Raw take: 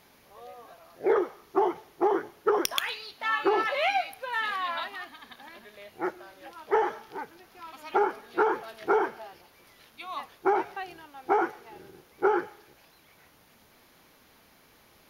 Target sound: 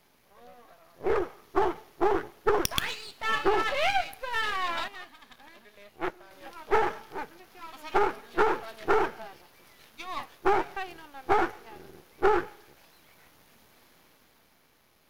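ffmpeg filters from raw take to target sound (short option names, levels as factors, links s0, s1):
-filter_complex "[0:a]aeval=exprs='if(lt(val(0),0),0.251*val(0),val(0))':c=same,dynaudnorm=f=180:g=13:m=2.11,asettb=1/sr,asplit=3[s0][s1][s2];[s0]atrim=end=4.884[s3];[s1]atrim=start=4.88:end=6.31,asetpts=PTS-STARTPTS,afade=t=in:d=0.004:c=qsin,afade=t=out:st=1.426:d=0.004:c=qsin,aeval=exprs='0.224*(cos(1*acos(clip(val(0)/0.224,-1,1)))-cos(1*PI/2))+0.0355*(cos(3*acos(clip(val(0)/0.224,-1,1)))-cos(3*PI/2))':c=same[s4];[s2]atrim=start=6.306[s5];[s3][s4]acrossfade=d=0.004:c1=hsin:c2=qsin[s6];[s6][s5]acrossfade=d=0.004:c1=qsin:c2=hsin,volume=0.75"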